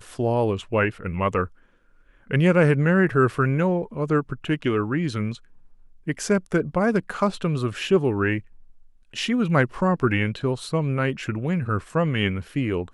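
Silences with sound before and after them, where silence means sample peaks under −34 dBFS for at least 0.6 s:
0:01.47–0:02.31
0:05.36–0:06.07
0:08.40–0:09.14

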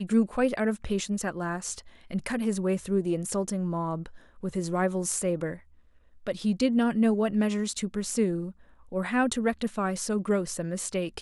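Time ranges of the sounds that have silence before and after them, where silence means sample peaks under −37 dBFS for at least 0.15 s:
0:02.11–0:04.06
0:04.43–0:05.56
0:06.27–0:08.51

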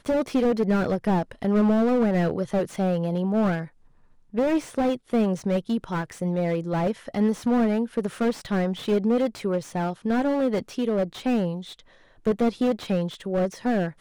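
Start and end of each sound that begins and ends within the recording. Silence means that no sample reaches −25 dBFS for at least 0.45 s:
0:04.37–0:11.55

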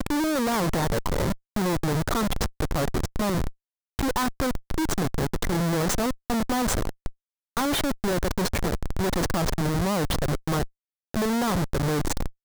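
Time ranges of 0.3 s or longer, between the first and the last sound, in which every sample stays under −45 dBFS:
0:03.52–0:03.99
0:07.11–0:07.57
0:10.67–0:11.14

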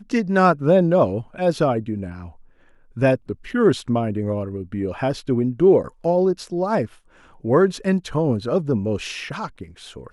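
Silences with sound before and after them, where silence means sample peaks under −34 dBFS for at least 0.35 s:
0:02.30–0:02.97
0:06.86–0:07.44

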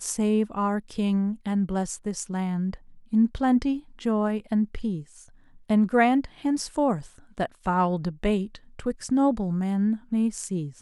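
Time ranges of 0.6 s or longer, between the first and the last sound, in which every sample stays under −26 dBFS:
0:04.96–0:05.70

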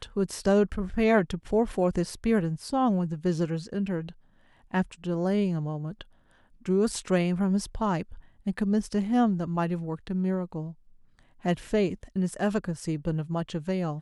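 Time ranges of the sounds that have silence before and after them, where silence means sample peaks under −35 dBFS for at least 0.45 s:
0:04.74–0:06.01
0:06.66–0:10.71

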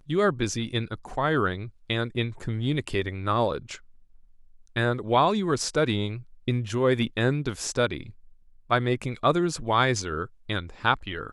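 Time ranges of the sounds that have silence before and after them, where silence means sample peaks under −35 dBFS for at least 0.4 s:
0:04.76–0:08.10

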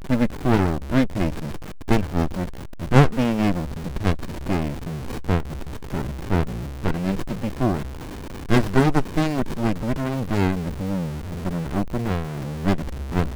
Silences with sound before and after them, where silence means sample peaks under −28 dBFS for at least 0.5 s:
0:07.86–0:08.50

